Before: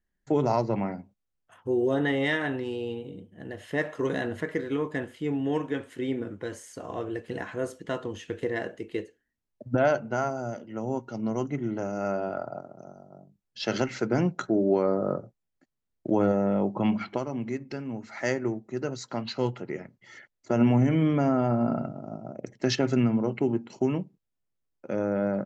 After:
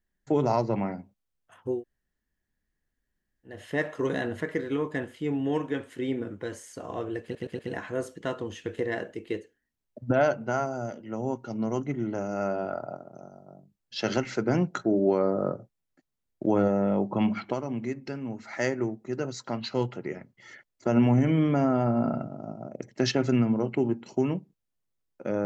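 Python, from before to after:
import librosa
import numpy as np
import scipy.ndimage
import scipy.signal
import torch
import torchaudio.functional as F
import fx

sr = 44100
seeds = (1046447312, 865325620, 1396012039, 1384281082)

y = fx.edit(x, sr, fx.room_tone_fill(start_s=1.76, length_s=1.75, crossfade_s=0.16),
    fx.stutter(start_s=7.23, slice_s=0.12, count=4), tone=tone)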